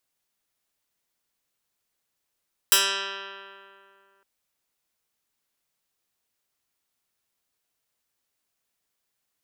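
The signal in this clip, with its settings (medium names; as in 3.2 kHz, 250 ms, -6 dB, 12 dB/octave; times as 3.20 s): plucked string G3, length 1.51 s, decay 2.54 s, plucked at 0.09, medium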